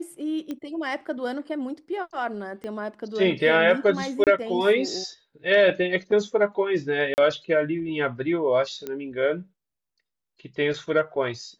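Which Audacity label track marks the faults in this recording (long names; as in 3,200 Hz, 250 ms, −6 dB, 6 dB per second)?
0.510000	0.510000	click −20 dBFS
2.640000	2.640000	click −24 dBFS
4.240000	4.270000	drop-out 28 ms
7.140000	7.180000	drop-out 39 ms
8.870000	8.870000	click −18 dBFS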